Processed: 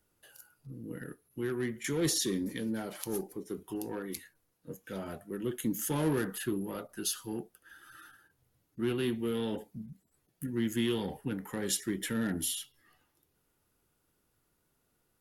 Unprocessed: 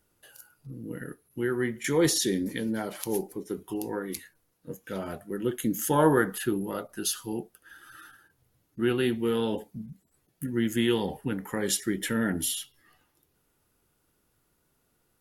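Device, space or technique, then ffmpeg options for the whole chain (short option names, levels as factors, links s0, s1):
one-band saturation: -filter_complex "[0:a]acrossover=split=360|2500[s0][s1][s2];[s1]asoftclip=type=tanh:threshold=0.0224[s3];[s0][s3][s2]amix=inputs=3:normalize=0,volume=0.631"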